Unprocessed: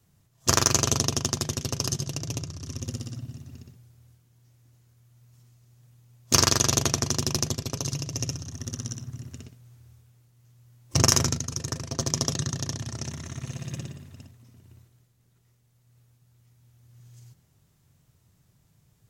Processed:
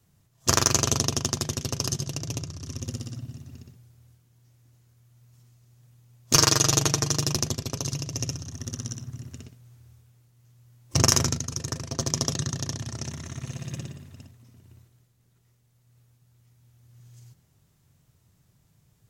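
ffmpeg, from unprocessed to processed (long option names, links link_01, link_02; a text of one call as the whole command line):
ffmpeg -i in.wav -filter_complex "[0:a]asettb=1/sr,asplit=3[link_01][link_02][link_03];[link_01]atrim=end=6.344[link_04];[link_02]atrim=start=6.34:end=7.34,asetpts=PTS-STARTPTS,afade=type=in:duration=0.004:curve=qsin,afade=type=out:start_time=0.996:duration=0.004:curve=qsin,aecho=1:1:6.5:0.65,atrim=end_sample=44100[link_05];[link_03]atrim=start=7.336[link_06];[link_04][link_05]acrossfade=duration=0.004:curve1=hsin:curve2=qsin[link_07];[link_07][link_06]acrossfade=duration=0.004:curve1=qsin:curve2=hsin" out.wav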